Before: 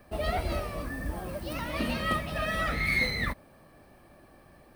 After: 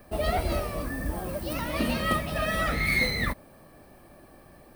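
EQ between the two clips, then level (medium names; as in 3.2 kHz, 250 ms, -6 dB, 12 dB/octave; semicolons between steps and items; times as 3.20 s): RIAA curve recording; tilt EQ -4 dB/octave; treble shelf 5.1 kHz +4.5 dB; +2.5 dB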